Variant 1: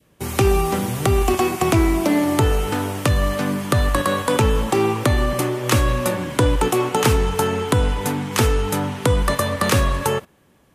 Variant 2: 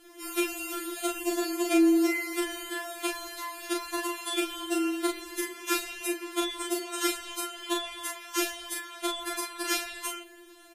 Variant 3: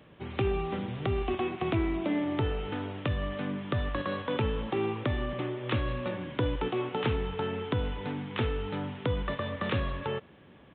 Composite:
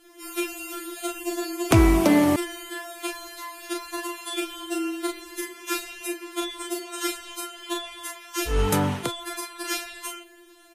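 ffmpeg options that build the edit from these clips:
ffmpeg -i take0.wav -i take1.wav -filter_complex "[0:a]asplit=2[link_01][link_02];[1:a]asplit=3[link_03][link_04][link_05];[link_03]atrim=end=1.712[link_06];[link_01]atrim=start=1.708:end=2.362[link_07];[link_04]atrim=start=2.358:end=8.61[link_08];[link_02]atrim=start=8.45:end=9.1[link_09];[link_05]atrim=start=8.94[link_10];[link_06][link_07]acrossfade=duration=0.004:curve1=hsin:curve2=hsin[link_11];[link_11][link_08]acrossfade=duration=0.004:curve1=hsin:curve2=hsin[link_12];[link_12][link_09]acrossfade=duration=0.16:curve1=tri:curve2=tri[link_13];[link_13][link_10]acrossfade=duration=0.16:curve1=tri:curve2=tri" out.wav

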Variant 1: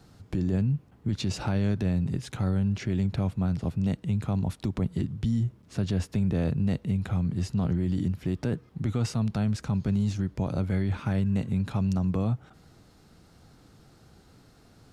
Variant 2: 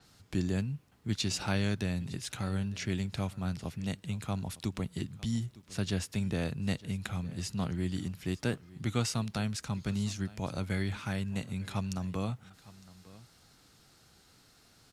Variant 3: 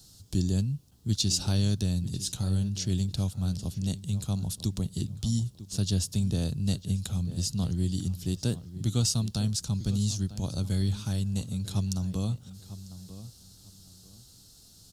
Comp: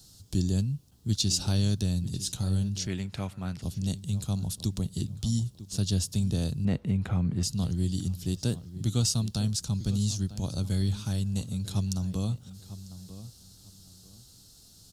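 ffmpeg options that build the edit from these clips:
ffmpeg -i take0.wav -i take1.wav -i take2.wav -filter_complex "[2:a]asplit=3[link_01][link_02][link_03];[link_01]atrim=end=2.872[link_04];[1:a]atrim=start=2.868:end=3.622[link_05];[link_02]atrim=start=3.618:end=6.652[link_06];[0:a]atrim=start=6.648:end=7.432[link_07];[link_03]atrim=start=7.428[link_08];[link_04][link_05]acrossfade=duration=0.004:curve1=hsin:curve2=hsin[link_09];[link_09][link_06]acrossfade=duration=0.004:curve1=hsin:curve2=hsin[link_10];[link_10][link_07]acrossfade=duration=0.004:curve1=hsin:curve2=hsin[link_11];[link_11][link_08]acrossfade=duration=0.004:curve1=hsin:curve2=hsin" out.wav

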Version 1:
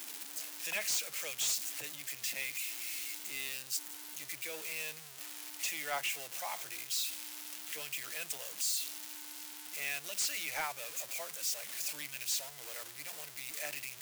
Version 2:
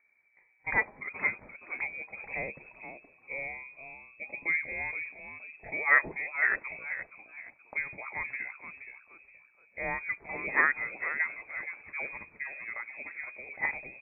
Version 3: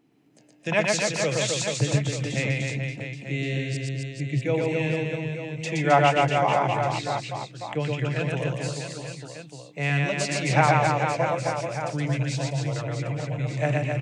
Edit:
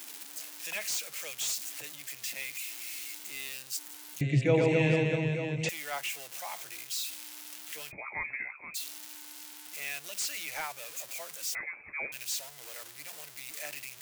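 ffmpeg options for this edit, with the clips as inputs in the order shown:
ffmpeg -i take0.wav -i take1.wav -i take2.wav -filter_complex "[1:a]asplit=2[link_01][link_02];[0:a]asplit=4[link_03][link_04][link_05][link_06];[link_03]atrim=end=4.212[link_07];[2:a]atrim=start=4.208:end=5.692[link_08];[link_04]atrim=start=5.688:end=7.92[link_09];[link_01]atrim=start=7.9:end=8.76[link_10];[link_05]atrim=start=8.74:end=11.552[link_11];[link_02]atrim=start=11.548:end=12.122[link_12];[link_06]atrim=start=12.118[link_13];[link_07][link_08]acrossfade=duration=0.004:curve1=hsin:curve2=hsin[link_14];[link_14][link_09]acrossfade=duration=0.004:curve1=hsin:curve2=hsin[link_15];[link_15][link_10]acrossfade=duration=0.02:curve1=tri:curve2=tri[link_16];[link_16][link_11]acrossfade=duration=0.02:curve1=tri:curve2=tri[link_17];[link_17][link_12]acrossfade=duration=0.004:curve1=hsin:curve2=hsin[link_18];[link_18][link_13]acrossfade=duration=0.004:curve1=hsin:curve2=hsin" out.wav

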